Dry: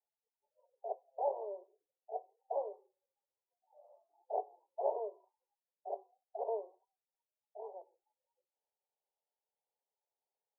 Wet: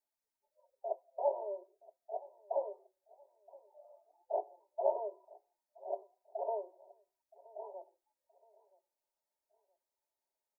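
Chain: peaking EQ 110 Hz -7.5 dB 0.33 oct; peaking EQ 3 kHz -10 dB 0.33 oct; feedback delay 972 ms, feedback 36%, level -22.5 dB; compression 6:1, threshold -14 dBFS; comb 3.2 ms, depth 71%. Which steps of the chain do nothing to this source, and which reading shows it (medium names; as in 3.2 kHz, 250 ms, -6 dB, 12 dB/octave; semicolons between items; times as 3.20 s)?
peaking EQ 110 Hz: input has nothing below 340 Hz; peaking EQ 3 kHz: input has nothing above 1 kHz; compression, threshold -14 dBFS: peak at its input -20.5 dBFS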